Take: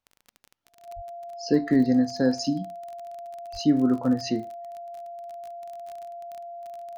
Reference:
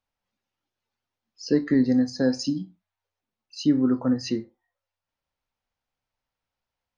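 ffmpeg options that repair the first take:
-filter_complex "[0:a]adeclick=t=4,bandreject=f=690:w=30,asplit=3[a][b][c];[a]afade=t=out:st=0.95:d=0.02[d];[b]highpass=f=140:w=0.5412,highpass=f=140:w=1.3066,afade=t=in:st=0.95:d=0.02,afade=t=out:st=1.07:d=0.02[e];[c]afade=t=in:st=1.07:d=0.02[f];[d][e][f]amix=inputs=3:normalize=0,asplit=3[g][h][i];[g]afade=t=out:st=3.52:d=0.02[j];[h]highpass=f=140:w=0.5412,highpass=f=140:w=1.3066,afade=t=in:st=3.52:d=0.02,afade=t=out:st=3.64:d=0.02[k];[i]afade=t=in:st=3.64:d=0.02[l];[j][k][l]amix=inputs=3:normalize=0"

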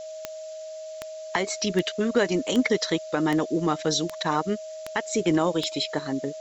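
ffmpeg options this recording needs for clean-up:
-af "adeclick=t=4,bandreject=f=630:w=30,afftdn=nr=30:nf=-38"

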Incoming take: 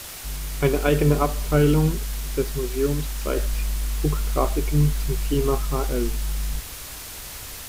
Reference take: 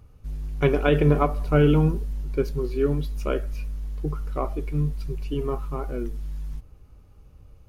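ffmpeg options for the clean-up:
-af "afwtdn=0.016,asetnsamples=n=441:p=0,asendcmd='3.37 volume volume -5.5dB',volume=0dB"

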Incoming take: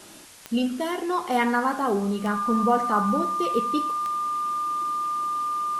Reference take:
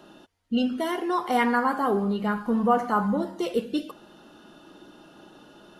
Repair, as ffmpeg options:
-af "adeclick=t=4,bandreject=f=1.2k:w=30,afwtdn=0.005"

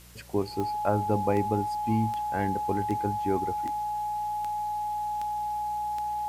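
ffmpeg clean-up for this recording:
-af "adeclick=t=4,bandreject=f=59.7:t=h:w=4,bandreject=f=119.4:t=h:w=4,bandreject=f=179.1:t=h:w=4,bandreject=f=840:w=30,afwtdn=0.0022"

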